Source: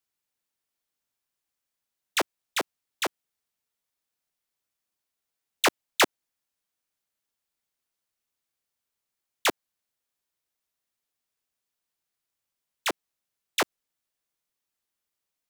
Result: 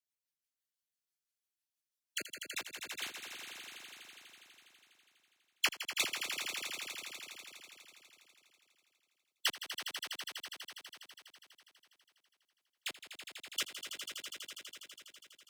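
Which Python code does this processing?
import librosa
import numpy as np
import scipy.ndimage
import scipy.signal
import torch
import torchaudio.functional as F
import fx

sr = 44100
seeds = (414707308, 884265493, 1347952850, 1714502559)

p1 = fx.spec_dropout(x, sr, seeds[0], share_pct=26)
p2 = fx.tone_stack(p1, sr, knobs='5-5-5')
p3 = fx.rotary(p2, sr, hz=6.0)
p4 = fx.dynamic_eq(p3, sr, hz=3000.0, q=1.3, threshold_db=-51.0, ratio=4.0, max_db=5)
p5 = p4 + fx.echo_swell(p4, sr, ms=82, loudest=5, wet_db=-10, dry=0)
p6 = fx.band_squash(p5, sr, depth_pct=70, at=(2.21, 3.03))
y = p6 * librosa.db_to_amplitude(1.0)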